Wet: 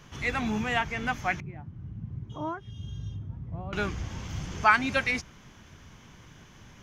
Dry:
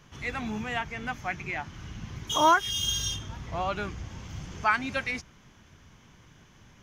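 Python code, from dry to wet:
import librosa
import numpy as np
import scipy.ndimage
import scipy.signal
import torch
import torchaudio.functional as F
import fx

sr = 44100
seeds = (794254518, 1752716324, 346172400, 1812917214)

y = fx.bandpass_q(x, sr, hz=120.0, q=1.2, at=(1.4, 3.73))
y = y * 10.0 ** (4.0 / 20.0)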